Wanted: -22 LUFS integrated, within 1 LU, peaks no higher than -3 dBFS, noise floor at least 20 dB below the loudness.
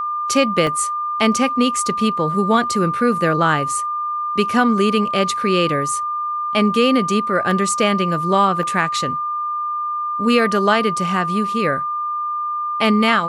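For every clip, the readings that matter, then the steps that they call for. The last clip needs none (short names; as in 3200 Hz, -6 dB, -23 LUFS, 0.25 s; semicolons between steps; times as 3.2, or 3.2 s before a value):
dropouts 3; longest dropout 1.2 ms; steady tone 1200 Hz; tone level -20 dBFS; loudness -18.0 LUFS; peak -2.5 dBFS; loudness target -22.0 LUFS
-> interpolate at 0.67/7.51/8.63, 1.2 ms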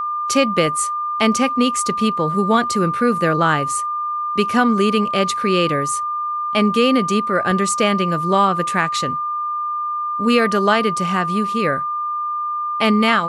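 dropouts 0; steady tone 1200 Hz; tone level -20 dBFS
-> notch 1200 Hz, Q 30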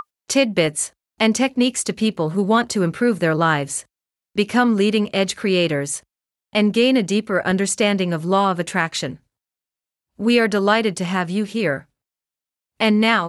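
steady tone none; loudness -19.5 LUFS; peak -3.0 dBFS; loudness target -22.0 LUFS
-> gain -2.5 dB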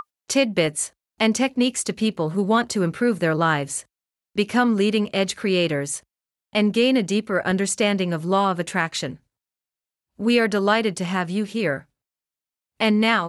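loudness -22.0 LUFS; peak -5.5 dBFS; noise floor -91 dBFS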